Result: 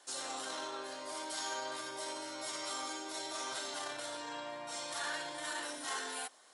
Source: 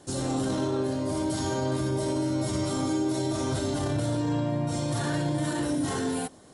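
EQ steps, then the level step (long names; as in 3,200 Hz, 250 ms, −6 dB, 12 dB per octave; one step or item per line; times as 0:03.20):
high-pass filter 1,100 Hz 12 dB per octave
high-shelf EQ 8,700 Hz −7.5 dB
−1.0 dB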